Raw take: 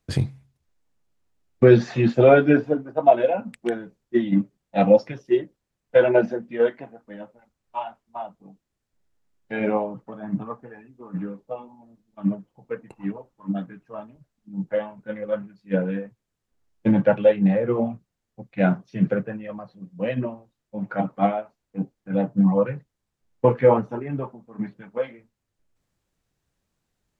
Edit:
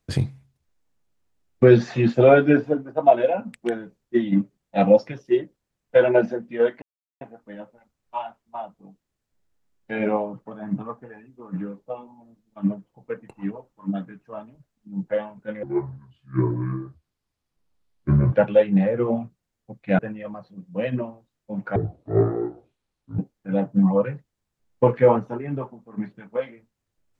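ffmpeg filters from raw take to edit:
ffmpeg -i in.wav -filter_complex "[0:a]asplit=7[link_01][link_02][link_03][link_04][link_05][link_06][link_07];[link_01]atrim=end=6.82,asetpts=PTS-STARTPTS,afade=type=out:start_time=6.816:duration=0.004:curve=hsin,apad=pad_dur=0.39[link_08];[link_02]atrim=start=6.82:end=15.244,asetpts=PTS-STARTPTS,afade=type=in:duration=0.004:curve=hsin[link_09];[link_03]atrim=start=15.24:end=17.02,asetpts=PTS-STARTPTS,asetrate=29106,aresample=44100,atrim=end_sample=118936,asetpts=PTS-STARTPTS[link_10];[link_04]atrim=start=17.016:end=18.682[link_11];[link_05]atrim=start=19.228:end=21.004[link_12];[link_06]atrim=start=21:end=21.8,asetpts=PTS-STARTPTS,asetrate=24696,aresample=44100[link_13];[link_07]atrim=start=21.796[link_14];[link_08][link_09]concat=n=2:v=0:a=1[link_15];[link_15][link_10]acrossfade=duration=0.004:curve1=hsin:curve2=hsin[link_16];[link_16][link_11]acrossfade=duration=0.004:curve1=hsin:curve2=hsin[link_17];[link_17][link_12]acrossfade=duration=0.004:curve1=hsin:curve2=hsin[link_18];[link_18][link_13]acrossfade=duration=0.004:curve1=hsin:curve2=hsin[link_19];[link_19][link_14]acrossfade=duration=0.004:curve1=hsin:curve2=hsin" out.wav

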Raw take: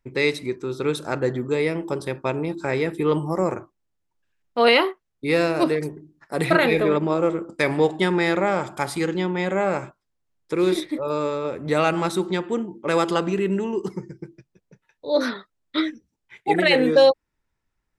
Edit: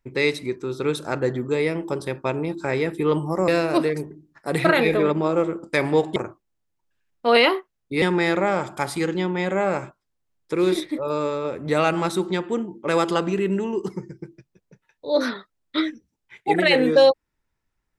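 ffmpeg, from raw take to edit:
ffmpeg -i in.wav -filter_complex "[0:a]asplit=4[link_01][link_02][link_03][link_04];[link_01]atrim=end=3.482[link_05];[link_02]atrim=start=5.338:end=8.022[link_06];[link_03]atrim=start=3.478:end=5.342[link_07];[link_04]atrim=start=8.018[link_08];[link_05][link_06]acrossfade=duration=0.004:curve1=hsin:curve2=hsin[link_09];[link_09][link_07]acrossfade=duration=0.004:curve1=hsin:curve2=hsin[link_10];[link_10][link_08]acrossfade=duration=0.004:curve1=hsin:curve2=hsin" out.wav

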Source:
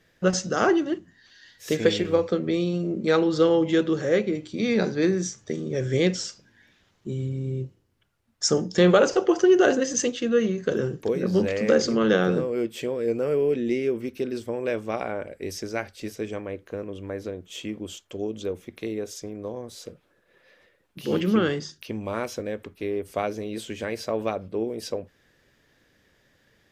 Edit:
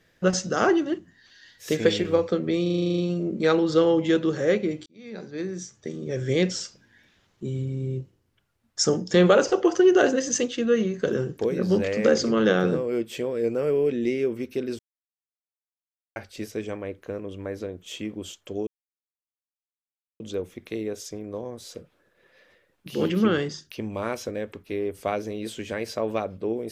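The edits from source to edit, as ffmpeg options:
ffmpeg -i in.wav -filter_complex "[0:a]asplit=14[link_01][link_02][link_03][link_04][link_05][link_06][link_07][link_08][link_09][link_10][link_11][link_12][link_13][link_14];[link_01]atrim=end=2.662[link_15];[link_02]atrim=start=2.618:end=2.662[link_16];[link_03]atrim=start=2.618:end=2.662[link_17];[link_04]atrim=start=2.618:end=2.662[link_18];[link_05]atrim=start=2.618:end=2.662[link_19];[link_06]atrim=start=2.618:end=2.662[link_20];[link_07]atrim=start=2.618:end=2.662[link_21];[link_08]atrim=start=2.618:end=2.662[link_22];[link_09]atrim=start=2.618:end=2.662[link_23];[link_10]atrim=start=2.618:end=4.5,asetpts=PTS-STARTPTS,afade=type=out:start_time=1.878:duration=0.004:curve=hsin[link_24];[link_11]atrim=start=4.5:end=14.43,asetpts=PTS-STARTPTS,afade=type=in:duration=1.65,afade=type=out:start_time=9.926:duration=0.004:curve=hsin[link_25];[link_12]atrim=start=14.43:end=15.8,asetpts=PTS-STARTPTS,volume=0[link_26];[link_13]atrim=start=15.8:end=18.31,asetpts=PTS-STARTPTS,afade=type=in:duration=0.004:curve=hsin,afade=type=out:start_time=2.506:duration=0.004:curve=hsin,apad=pad_dur=1.53[link_27];[link_14]atrim=start=18.31,asetpts=PTS-STARTPTS,afade=type=in:duration=0.004:curve=hsin[link_28];[link_15][link_16]acrossfade=duration=0.004:curve1=hsin:curve2=hsin[link_29];[link_29][link_17]acrossfade=duration=0.004:curve1=hsin:curve2=hsin[link_30];[link_30][link_18]acrossfade=duration=0.004:curve1=hsin:curve2=hsin[link_31];[link_31][link_19]acrossfade=duration=0.004:curve1=hsin:curve2=hsin[link_32];[link_32][link_20]acrossfade=duration=0.004:curve1=hsin:curve2=hsin[link_33];[link_33][link_21]acrossfade=duration=0.004:curve1=hsin:curve2=hsin[link_34];[link_34][link_22]acrossfade=duration=0.004:curve1=hsin:curve2=hsin[link_35];[link_35][link_23]acrossfade=duration=0.004:curve1=hsin:curve2=hsin[link_36];[link_24][link_25][link_26][link_27][link_28]concat=n=5:v=0:a=1[link_37];[link_36][link_37]acrossfade=duration=0.004:curve1=hsin:curve2=hsin" out.wav

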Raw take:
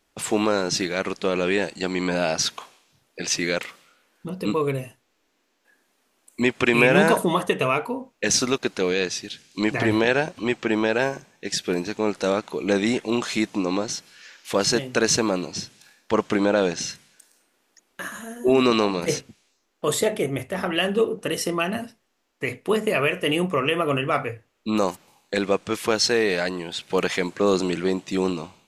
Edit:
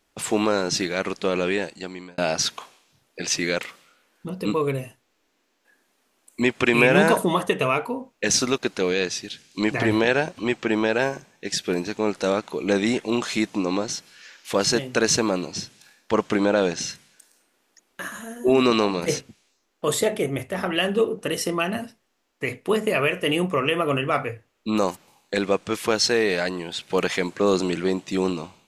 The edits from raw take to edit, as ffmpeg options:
ffmpeg -i in.wav -filter_complex "[0:a]asplit=2[link_01][link_02];[link_01]atrim=end=2.18,asetpts=PTS-STARTPTS,afade=type=out:start_time=1.39:duration=0.79[link_03];[link_02]atrim=start=2.18,asetpts=PTS-STARTPTS,afade=type=in:duration=0.004:curve=hsin[link_04];[link_03][link_04]concat=n=2:v=0:a=1" out.wav

